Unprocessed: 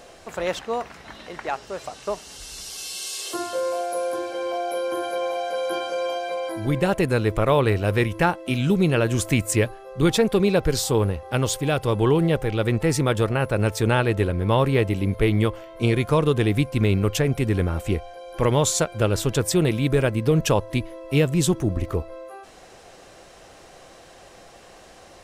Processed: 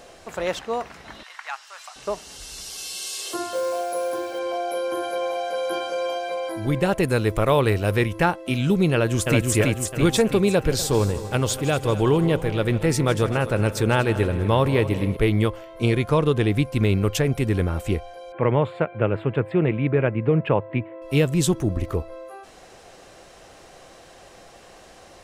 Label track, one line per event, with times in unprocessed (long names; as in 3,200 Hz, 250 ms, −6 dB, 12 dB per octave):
1.230000	1.960000	high-pass filter 1,000 Hz 24 dB per octave
3.510000	4.390000	log-companded quantiser 6 bits
7.030000	7.970000	high-shelf EQ 6,400 Hz +6.5 dB
8.930000	9.540000	delay throw 330 ms, feedback 55%, level −2.5 dB
10.550000	15.170000	echo machine with several playback heads 80 ms, heads second and third, feedback 46%, level −15.5 dB
15.960000	16.650000	high-shelf EQ 7,200 Hz −6 dB
18.320000	21.020000	elliptic band-pass filter 110–2,400 Hz